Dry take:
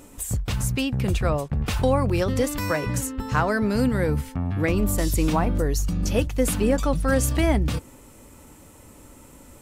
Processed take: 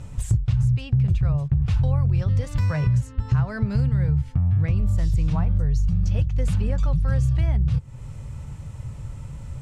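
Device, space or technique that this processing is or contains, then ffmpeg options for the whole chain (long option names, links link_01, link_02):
jukebox: -af "lowpass=6000,lowshelf=frequency=190:width_type=q:width=3:gain=13.5,acompressor=threshold=-21dB:ratio=4,volume=1dB"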